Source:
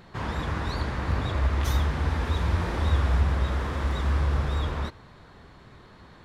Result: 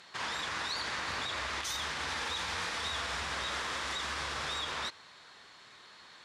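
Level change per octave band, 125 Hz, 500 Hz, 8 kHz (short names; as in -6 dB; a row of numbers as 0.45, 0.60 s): -25.0, -9.5, +6.0 dB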